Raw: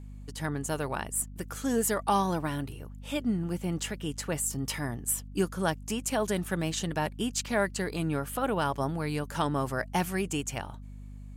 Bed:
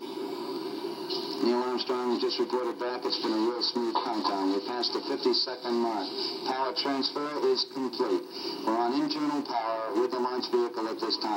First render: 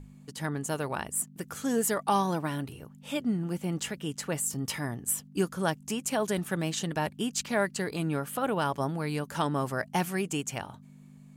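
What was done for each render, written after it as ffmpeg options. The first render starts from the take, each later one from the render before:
-af "bandreject=f=50:t=h:w=6,bandreject=f=100:t=h:w=6"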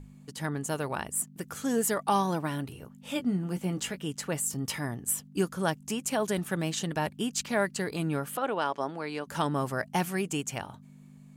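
-filter_complex "[0:a]asettb=1/sr,asplit=3[s0][s1][s2];[s0]atrim=end=2.804[s3];[s1]atrim=start=2.8:end=3.99,asetpts=PTS-STARTPTS,afade=t=in:d=0.004:c=qsin,afade=t=out:st=1.186:d=0.004:c=qsin,asplit=2[s4][s5];[s5]adelay=16,volume=0.355[s6];[s4][s6]amix=inputs=2:normalize=0,atrim=end_sample=52479[s7];[s2]atrim=start=3.986[s8];[s3][s7]acrossfade=d=0.004:c1=hsin:c2=qsin[s9];[s9][s8]acrossfade=d=0.004:c1=qsin:c2=hsin,asettb=1/sr,asplit=3[s10][s11][s12];[s10]atrim=end=8.374[s13];[s11]atrim=start=8.37:end=9.27,asetpts=PTS-STARTPTS,afade=t=in:d=0.004:c=qsin,afade=t=out:st=0.896:d=0.004:c=qsin,highpass=310,lowpass=5700[s14];[s12]atrim=start=9.266[s15];[s13][s14]acrossfade=d=0.004:c1=hsin:c2=qsin[s16];[s16][s15]acrossfade=d=0.004:c1=qsin:c2=hsin"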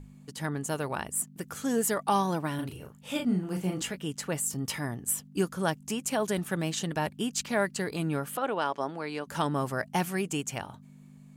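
-filter_complex "[0:a]asettb=1/sr,asplit=3[s0][s1][s2];[s0]atrim=end=2.554[s3];[s1]atrim=start=2.55:end=3.82,asetpts=PTS-STARTPTS,afade=t=in:d=0.004:c=qsin,afade=t=out:st=1.266:d=0.004:c=qsin,asplit=2[s4][s5];[s5]adelay=38,volume=0.596[s6];[s4][s6]amix=inputs=2:normalize=0,atrim=end_sample=56007[s7];[s2]atrim=start=3.816[s8];[s3][s7]acrossfade=d=0.004:c1=hsin:c2=qsin[s9];[s9][s8]acrossfade=d=0.004:c1=qsin:c2=hsin"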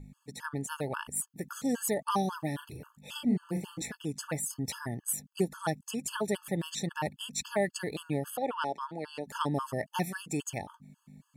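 -af "afftfilt=real='re*gt(sin(2*PI*3.7*pts/sr)*(1-2*mod(floor(b*sr/1024/870),2)),0)':imag='im*gt(sin(2*PI*3.7*pts/sr)*(1-2*mod(floor(b*sr/1024/870),2)),0)':win_size=1024:overlap=0.75"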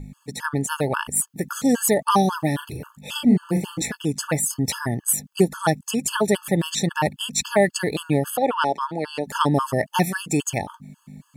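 -af "volume=3.76"

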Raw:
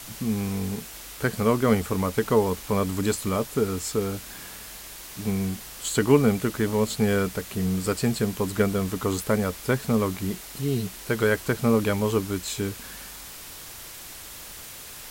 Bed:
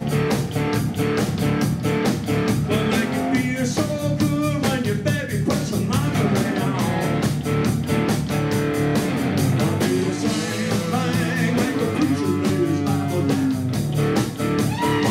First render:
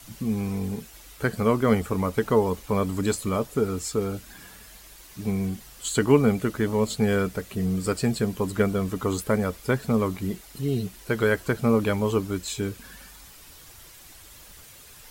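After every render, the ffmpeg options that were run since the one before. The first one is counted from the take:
-af "afftdn=nr=9:nf=-41"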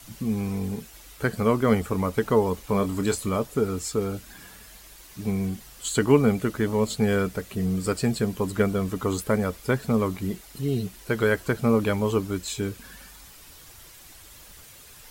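-filter_complex "[0:a]asettb=1/sr,asplit=3[s0][s1][s2];[s0]atrim=end=2.644[s3];[s1]atrim=start=2.64:end=3.27,asetpts=PTS-STARTPTS,afade=t=in:d=0.004:c=qsin,afade=t=out:st=0.626:d=0.004:c=qsin,asplit=2[s4][s5];[s5]adelay=25,volume=0.335[s6];[s4][s6]amix=inputs=2:normalize=0,atrim=end_sample=27783[s7];[s2]atrim=start=3.266[s8];[s3][s7]acrossfade=d=0.004:c1=hsin:c2=qsin[s9];[s9][s8]acrossfade=d=0.004:c1=qsin:c2=hsin"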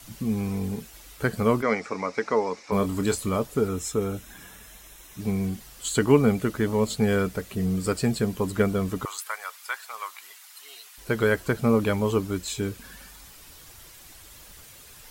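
-filter_complex "[0:a]asplit=3[s0][s1][s2];[s0]afade=t=out:st=1.61:d=0.02[s3];[s1]highpass=330,equalizer=f=380:t=q:w=4:g=-4,equalizer=f=2200:t=q:w=4:g=9,equalizer=f=3100:t=q:w=4:g=-10,equalizer=f=5400:t=q:w=4:g=7,lowpass=f=6600:w=0.5412,lowpass=f=6600:w=1.3066,afade=t=in:st=1.61:d=0.02,afade=t=out:st=2.71:d=0.02[s4];[s2]afade=t=in:st=2.71:d=0.02[s5];[s3][s4][s5]amix=inputs=3:normalize=0,asettb=1/sr,asplit=3[s6][s7][s8];[s6]atrim=end=3.684[s9];[s7]atrim=start=3.68:end=5.2,asetpts=PTS-STARTPTS,afade=t=in:d=0.004:c=qsin,afade=t=out:st=1.516:d=0.004:c=qsin,asuperstop=centerf=4600:order=4:qfactor=5.5[s10];[s8]atrim=start=5.196[s11];[s9][s10]acrossfade=d=0.004:c1=hsin:c2=qsin[s12];[s12][s11]acrossfade=d=0.004:c1=qsin:c2=hsin,asettb=1/sr,asplit=3[s13][s14][s15];[s13]atrim=end=9.054[s16];[s14]atrim=start=9.05:end=10.98,asetpts=PTS-STARTPTS,afade=t=in:d=0.004:c=qsin,afade=t=out:st=1.926:d=0.004:c=qsin,highpass=f=960:w=0.5412,highpass=f=960:w=1.3066[s17];[s15]atrim=start=10.976[s18];[s16][s17]acrossfade=d=0.004:c1=hsin:c2=qsin[s19];[s19][s18]acrossfade=d=0.004:c1=qsin:c2=hsin"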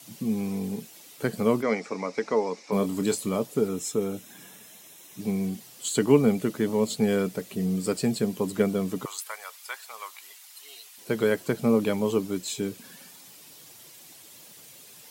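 -af "highpass=f=140:w=0.5412,highpass=f=140:w=1.3066,equalizer=f=1400:t=o:w=1.1:g=-7"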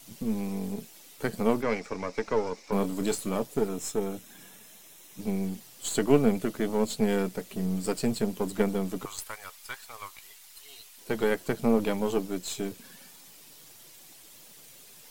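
-af "aeval=exprs='if(lt(val(0),0),0.447*val(0),val(0))':c=same"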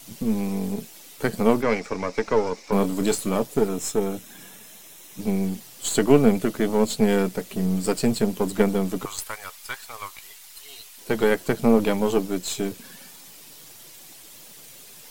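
-af "volume=2,alimiter=limit=0.794:level=0:latency=1"

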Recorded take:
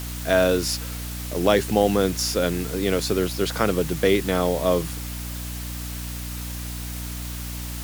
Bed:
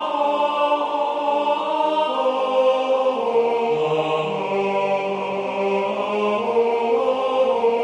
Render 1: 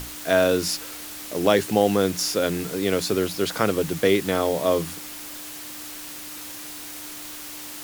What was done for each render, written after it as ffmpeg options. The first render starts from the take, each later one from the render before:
-af "bandreject=f=60:t=h:w=6,bandreject=f=120:t=h:w=6,bandreject=f=180:t=h:w=6,bandreject=f=240:t=h:w=6"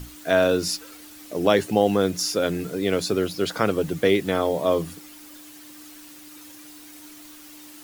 -af "afftdn=nr=10:nf=-37"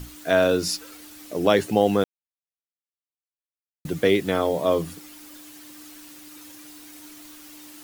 -filter_complex "[0:a]asplit=3[s0][s1][s2];[s0]atrim=end=2.04,asetpts=PTS-STARTPTS,afade=t=out:st=2.036:d=0.004:c=hsin[s3];[s1]atrim=start=2.04:end=3.85,asetpts=PTS-STARTPTS,volume=0[s4];[s2]atrim=start=3.85,asetpts=PTS-STARTPTS,afade=t=in:d=0.004:c=hsin[s5];[s3][s4][s5]concat=n=3:v=0:a=1"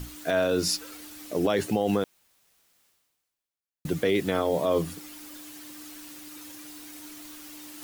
-af "alimiter=limit=0.188:level=0:latency=1:release=36,areverse,acompressor=mode=upward:threshold=0.00891:ratio=2.5,areverse"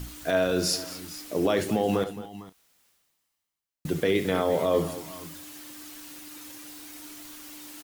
-filter_complex "[0:a]asplit=2[s0][s1];[s1]adelay=32,volume=0.224[s2];[s0][s2]amix=inputs=2:normalize=0,aecho=1:1:71|218|453|454:0.237|0.168|0.106|0.141"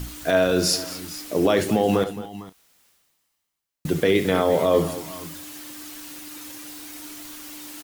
-af "volume=1.78"

